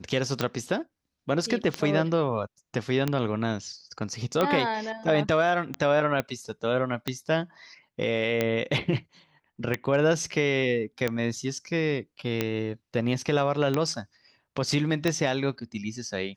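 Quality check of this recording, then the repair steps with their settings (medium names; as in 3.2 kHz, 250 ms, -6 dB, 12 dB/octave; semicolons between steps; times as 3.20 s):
tick 45 rpm -11 dBFS
6.20 s: pop -13 dBFS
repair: de-click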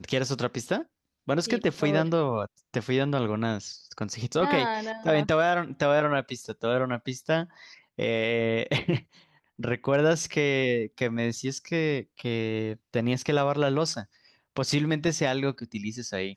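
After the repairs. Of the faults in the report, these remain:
6.20 s: pop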